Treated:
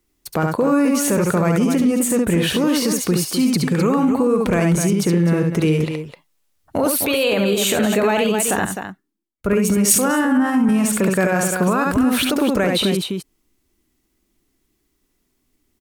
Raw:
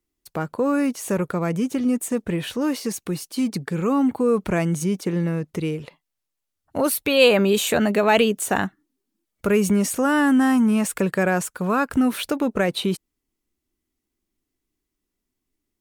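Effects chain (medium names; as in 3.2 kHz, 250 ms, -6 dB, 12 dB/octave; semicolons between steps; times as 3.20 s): compression 2.5:1, threshold -23 dBFS, peak gain reduction 9 dB; loudspeakers at several distances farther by 24 m -5 dB, 88 m -10 dB; loudness maximiser +19.5 dB; 8.65–10.69 s: three bands expanded up and down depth 100%; trim -8.5 dB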